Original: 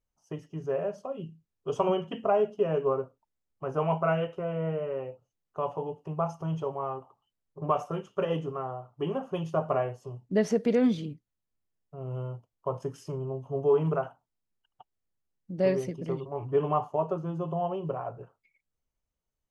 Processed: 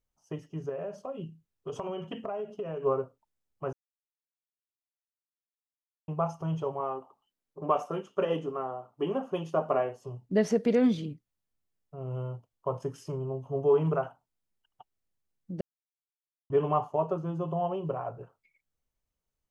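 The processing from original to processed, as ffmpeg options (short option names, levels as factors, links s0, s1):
-filter_complex "[0:a]asettb=1/sr,asplit=3[s0][s1][s2];[s0]atrim=end=0.694[s3];[s1]atrim=start=0.69:end=2.83,asetpts=PTS-STARTPTS,afade=t=in:d=0.004:c=qsin,afade=t=out:st=2.136:d=0.004:c=qsin,acompressor=threshold=0.0251:ratio=6:attack=3.2:release=140:knee=1:detection=peak[s4];[s2]atrim=start=2.826[s5];[s3][s4]acrossfade=d=0.004:c1=hsin:c2=qsin[s6];[s6][s5]acrossfade=d=0.004:c1=qsin:c2=hsin,asettb=1/sr,asplit=3[s7][s8][s9];[s7]atrim=end=6.804[s10];[s8]atrim=start=6.8:end=10.01,asetpts=PTS-STARTPTS,afade=t=in:d=0.004:c=qsin,afade=t=out:st=3.206:d=0.004:c=qsin,lowshelf=f=170:t=q:w=1.5:g=-8[s11];[s9]atrim=start=10.006[s12];[s10][s11]acrossfade=d=0.004:c1=hsin:c2=qsin[s13];[s13][s12]acrossfade=d=0.004:c1=qsin:c2=hsin,asplit=5[s14][s15][s16][s17][s18];[s14]atrim=end=3.73,asetpts=PTS-STARTPTS,afade=t=out:st=3.726:d=0.004:c=hsin[s19];[s15]atrim=start=3.73:end=6.08,asetpts=PTS-STARTPTS,volume=0[s20];[s16]atrim=start=6.08:end=15.61,asetpts=PTS-STARTPTS,afade=t=in:d=0.004:c=hsin,afade=t=out:st=9.526:d=0.004:c=hsin[s21];[s17]atrim=start=15.61:end=16.5,asetpts=PTS-STARTPTS,volume=0[s22];[s18]atrim=start=16.5,asetpts=PTS-STARTPTS,afade=t=in:d=0.004:c=hsin[s23];[s19][s20][s21][s22][s23]concat=n=5:v=0:a=1"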